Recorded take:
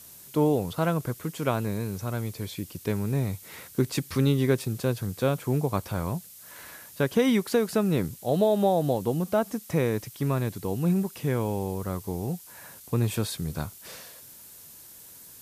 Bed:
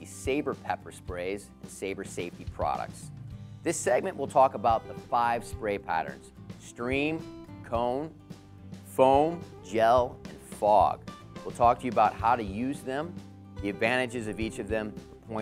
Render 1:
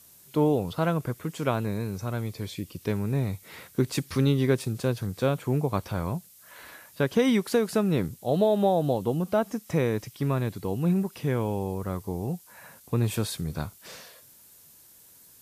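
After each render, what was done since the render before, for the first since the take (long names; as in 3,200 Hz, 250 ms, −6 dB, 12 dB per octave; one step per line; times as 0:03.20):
noise reduction from a noise print 6 dB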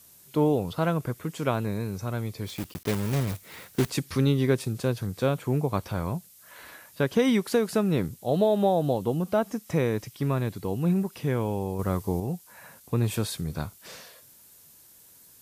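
0:02.46–0:03.92: one scale factor per block 3 bits
0:11.79–0:12.20: clip gain +4.5 dB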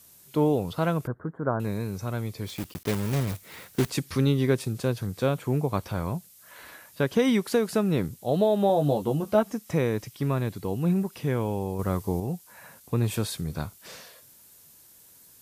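0:01.07–0:01.60: elliptic low-pass filter 1,600 Hz
0:08.68–0:09.43: double-tracking delay 14 ms −5 dB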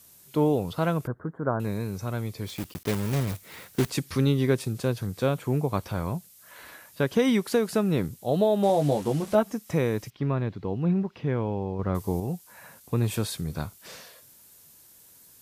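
0:08.63–0:09.35: linear delta modulator 64 kbit/s, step −36 dBFS
0:10.10–0:11.95: high-frequency loss of the air 240 metres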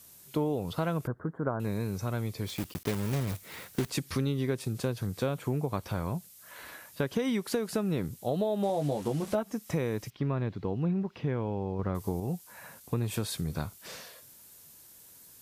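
downward compressor 4 to 1, threshold −27 dBFS, peak gain reduction 10 dB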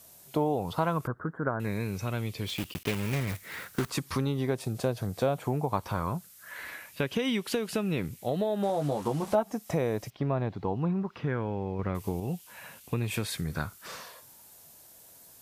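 auto-filter bell 0.2 Hz 660–2,900 Hz +10 dB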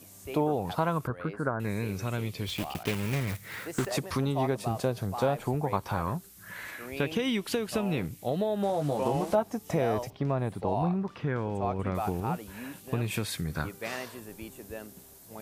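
mix in bed −11 dB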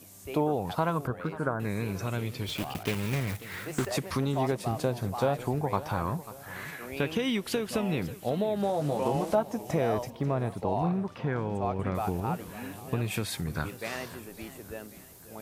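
feedback echo with a swinging delay time 544 ms, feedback 46%, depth 181 cents, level −16 dB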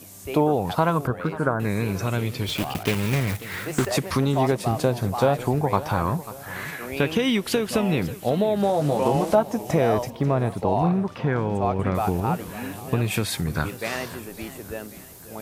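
level +7 dB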